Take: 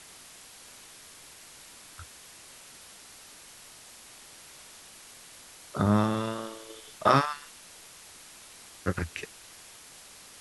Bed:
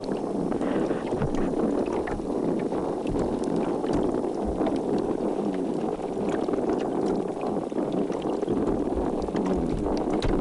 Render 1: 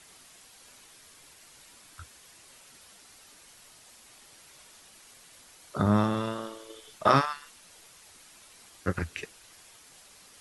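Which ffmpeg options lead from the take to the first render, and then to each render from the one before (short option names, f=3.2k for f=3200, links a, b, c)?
-af "afftdn=nr=6:nf=-51"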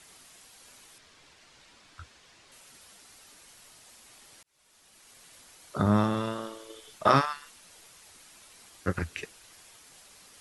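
-filter_complex "[0:a]asettb=1/sr,asplit=3[a][b][c];[a]atrim=end=0.984[d];[b]atrim=start=0.98:end=2.52,asetpts=PTS-STARTPTS,afade=t=in:d=0.004:c=qsin,afade=t=out:st=1.536:d=0.004:c=qsin,lowpass=5.2k[e];[c]atrim=start=2.516[f];[d][e]acrossfade=d=0.004:c1=hsin:c2=qsin[g];[g][f]acrossfade=d=0.004:c1=qsin:c2=hsin,asplit=2[h][i];[h]atrim=end=4.43,asetpts=PTS-STARTPTS,afade=t=out:st=4.426:d=0.004:c=hsin[j];[i]atrim=start=4.43,asetpts=PTS-STARTPTS,afade=t=in:d=0.82[k];[j][k]concat=n=2:v=0:a=1"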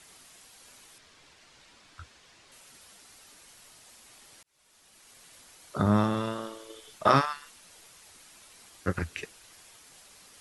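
-af anull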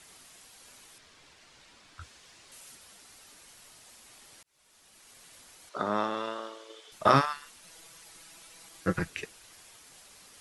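-filter_complex "[0:a]asettb=1/sr,asplit=3[a][b][c];[a]atrim=end=2.014[d];[b]atrim=start=2.01:end=2.75,asetpts=PTS-STARTPTS,afade=t=in:d=0.004:c=qsin,afade=t=out:st=0.736:d=0.004:c=qsin,highshelf=f=5.4k:g=6.5[e];[c]atrim=start=2.746[f];[d][e]acrossfade=d=0.004:c1=hsin:c2=qsin[g];[g][f]acrossfade=d=0.004:c1=qsin:c2=hsin,asettb=1/sr,asplit=3[h][i][j];[h]atrim=end=5.694[k];[i]atrim=start=5.69:end=6.92,asetpts=PTS-STARTPTS,afade=t=in:d=0.004:c=qsin,afade=t=out:st=1.226:d=0.004:c=qsin,highpass=420,lowpass=6k[l];[j]atrim=start=6.916[m];[k][l]acrossfade=d=0.004:c1=hsin:c2=qsin[n];[n][m]acrossfade=d=0.004:c1=qsin:c2=hsin,asettb=1/sr,asplit=3[o][p][q];[o]atrim=end=7.634[r];[p]atrim=start=7.63:end=9.1,asetpts=PTS-STARTPTS,afade=t=in:d=0.004:c=qsin,afade=t=out:st=1.466:d=0.004:c=qsin,aecho=1:1:6.1:0.65,atrim=end_sample=64827[s];[q]atrim=start=9.096[t];[r][s]acrossfade=d=0.004:c1=hsin:c2=qsin[u];[u][t]acrossfade=d=0.004:c1=qsin:c2=hsin"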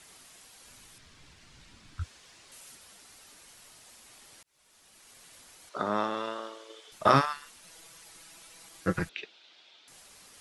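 -filter_complex "[0:a]asplit=3[a][b][c];[a]afade=t=out:st=0.66:d=0.02[d];[b]asubboost=boost=8:cutoff=240,afade=t=in:st=0.66:d=0.02,afade=t=out:st=2.03:d=0.02[e];[c]afade=t=in:st=2.03:d=0.02[f];[d][e][f]amix=inputs=3:normalize=0,asettb=1/sr,asplit=3[g][h][i];[g]atrim=end=9.094[j];[h]atrim=start=9.09:end=9.88,asetpts=PTS-STARTPTS,afade=t=in:d=0.004:c=qsin,afade=t=out:st=0.786:d=0.004:c=qsin,highpass=390,equalizer=f=480:t=q:w=4:g=-6,equalizer=f=760:t=q:w=4:g=-3,equalizer=f=1.1k:t=q:w=4:g=-9,equalizer=f=1.8k:t=q:w=4:g=-7,equalizer=f=3.6k:t=q:w=4:g=7,lowpass=f=4.3k:w=0.5412,lowpass=f=4.3k:w=1.3066[k];[i]atrim=start=9.876[l];[j][k]acrossfade=d=0.004:c1=hsin:c2=qsin[m];[m][l]acrossfade=d=0.004:c1=qsin:c2=hsin"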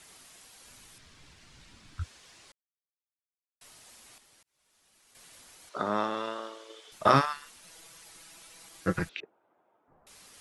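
-filter_complex "[0:a]asettb=1/sr,asplit=3[a][b][c];[a]atrim=end=9.204[d];[b]atrim=start=9.2:end=10.07,asetpts=PTS-STARTPTS,afade=t=in:d=0.004:c=qsin,afade=t=out:st=0.866:d=0.004:c=qsin,lowpass=f=1.1k:w=0.5412,lowpass=f=1.1k:w=1.3066[e];[c]atrim=start=10.066[f];[d][e]acrossfade=d=0.004:c1=hsin:c2=qsin[g];[g][f]acrossfade=d=0.004:c1=qsin:c2=hsin,asplit=5[h][i][j][k][l];[h]atrim=end=2.52,asetpts=PTS-STARTPTS,afade=t=out:st=2.516:d=0.004:c=hsin[m];[i]atrim=start=2.52:end=3.61,asetpts=PTS-STARTPTS,volume=0[n];[j]atrim=start=3.61:end=4.182,asetpts=PTS-STARTPTS,afade=t=in:d=0.004:c=hsin[o];[k]atrim=start=4.178:end=5.152,asetpts=PTS-STARTPTS,volume=-7.5dB[p];[l]atrim=start=5.148[q];[m][n][o]concat=n=3:v=0:a=1[r];[r][p]acrossfade=d=0.004:c1=hsin:c2=hsin[s];[s][q]acrossfade=d=0.004:c1=hsin:c2=hsin"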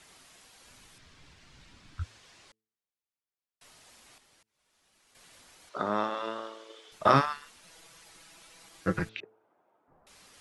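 -af "highshelf=f=7.5k:g=-8.5,bandreject=f=109.7:t=h:w=4,bandreject=f=219.4:t=h:w=4,bandreject=f=329.1:t=h:w=4,bandreject=f=438.8:t=h:w=4"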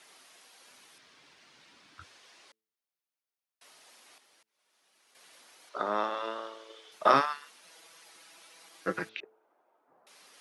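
-af "highpass=330,equalizer=f=7.5k:t=o:w=0.25:g=-5"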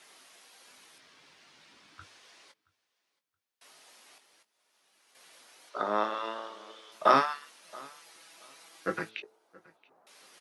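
-filter_complex "[0:a]asplit=2[a][b];[b]adelay=19,volume=-9.5dB[c];[a][c]amix=inputs=2:normalize=0,aecho=1:1:674|1348:0.0631|0.0139"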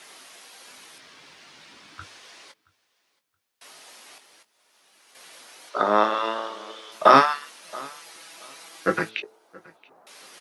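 -af "volume=9.5dB,alimiter=limit=-1dB:level=0:latency=1"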